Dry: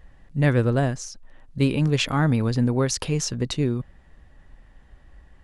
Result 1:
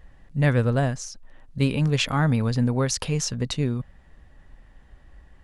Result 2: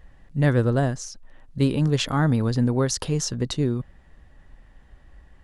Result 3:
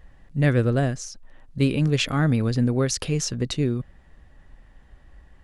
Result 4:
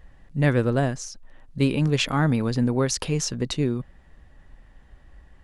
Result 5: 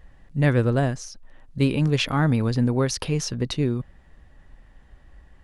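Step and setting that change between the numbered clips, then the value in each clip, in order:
dynamic EQ, frequency: 340, 2400, 930, 100, 7400 Hz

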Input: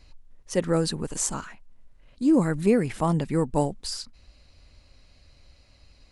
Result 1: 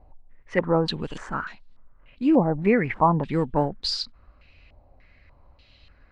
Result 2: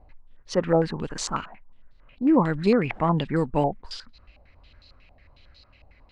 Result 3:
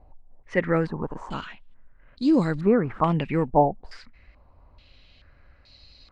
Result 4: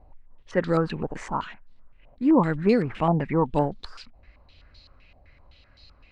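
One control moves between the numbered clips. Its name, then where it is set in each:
stepped low-pass, rate: 3.4, 11, 2.3, 7.8 Hz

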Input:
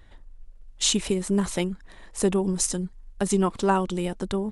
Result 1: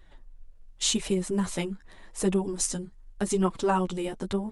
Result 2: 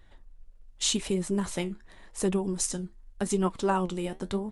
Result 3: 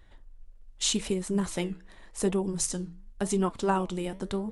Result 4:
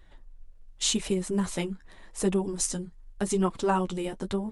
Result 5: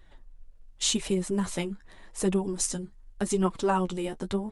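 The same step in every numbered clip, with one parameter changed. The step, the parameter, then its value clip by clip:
flange, regen: +2, +64, -79, -23, +23%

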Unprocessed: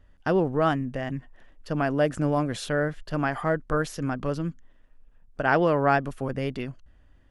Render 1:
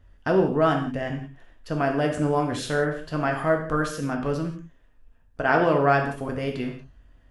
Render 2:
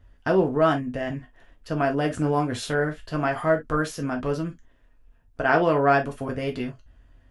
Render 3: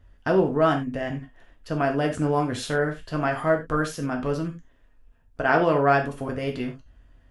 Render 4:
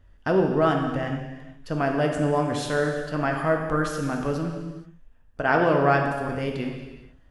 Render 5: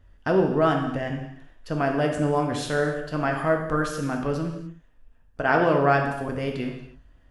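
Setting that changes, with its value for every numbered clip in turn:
non-linear reverb, gate: 210, 80, 120, 500, 320 ms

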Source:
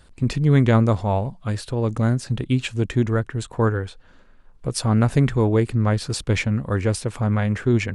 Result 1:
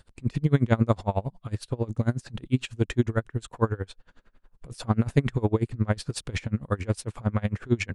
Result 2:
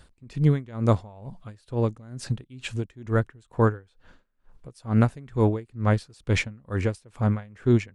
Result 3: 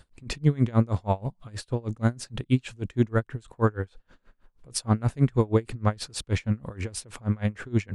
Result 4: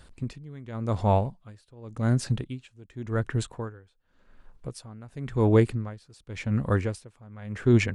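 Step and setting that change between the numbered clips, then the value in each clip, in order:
dB-linear tremolo, rate: 11, 2.2, 6.3, 0.9 Hz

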